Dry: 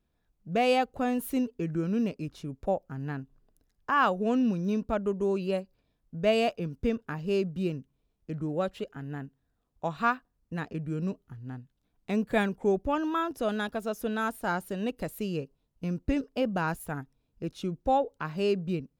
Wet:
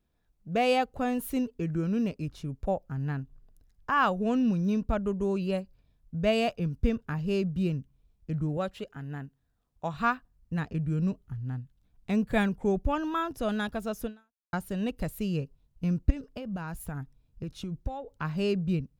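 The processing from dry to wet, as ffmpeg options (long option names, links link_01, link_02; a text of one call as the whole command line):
ffmpeg -i in.wav -filter_complex "[0:a]asettb=1/sr,asplit=3[link_01][link_02][link_03];[link_01]atrim=end=8.574[link_04];[link_02]atrim=start=8.57:end=9.94,asetpts=PTS-STARTPTS,afade=type=in:duration=0.004:curve=qsin,afade=type=out:start_time=1.366:duration=0.004:curve=qsin,lowshelf=frequency=140:gain=-11[link_05];[link_03]atrim=start=9.936[link_06];[link_04][link_05]acrossfade=duration=0.004:curve1=hsin:curve2=qsin[link_07];[link_07][link_06]acrossfade=duration=0.004:curve1=qsin:curve2=hsin,asettb=1/sr,asplit=3[link_08][link_09][link_10];[link_08]atrim=end=16.104[link_11];[link_09]atrim=start=16.1:end=18.08,asetpts=PTS-STARTPTS,afade=type=in:duration=0.004:curve=qsin,afade=type=out:start_time=1.976:duration=0.004:curve=qsin,acompressor=threshold=-33dB:ratio=10:attack=3.2:release=140:knee=1:detection=peak[link_12];[link_10]atrim=start=18.076[link_13];[link_11][link_12]acrossfade=duration=0.004:curve1=hsin:curve2=qsin[link_14];[link_14][link_13]acrossfade=duration=0.004:curve1=qsin:curve2=hsin,asplit=2[link_15][link_16];[link_15]atrim=end=14.53,asetpts=PTS-STARTPTS,afade=type=out:start_time=14.05:duration=0.48:curve=exp[link_17];[link_16]atrim=start=14.53,asetpts=PTS-STARTPTS,afade=type=in:duration=0.004:curve=hsin[link_18];[link_17][link_18]concat=n=2:v=0:a=1,asubboost=boost=3.5:cutoff=160" out.wav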